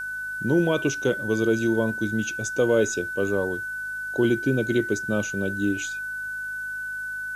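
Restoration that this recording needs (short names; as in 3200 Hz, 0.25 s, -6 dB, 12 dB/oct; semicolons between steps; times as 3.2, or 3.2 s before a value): de-hum 52.1 Hz, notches 5; notch 1500 Hz, Q 30; noise print and reduce 30 dB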